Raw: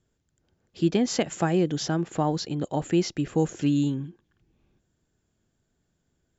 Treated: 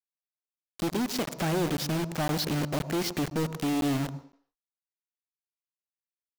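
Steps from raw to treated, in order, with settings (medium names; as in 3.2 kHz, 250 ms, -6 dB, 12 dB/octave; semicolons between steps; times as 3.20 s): Chebyshev low-pass 4.1 kHz, order 2; compression 4:1, threshold -25 dBFS, peak gain reduction 7 dB; rotary cabinet horn 1.2 Hz, later 8 Hz, at 3.08 s; companded quantiser 2-bit; on a send at -15.5 dB: reverberation RT60 0.55 s, pre-delay 98 ms; on the sum: crackling interface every 0.51 s, samples 512, zero, from 0.75 s; trim -1 dB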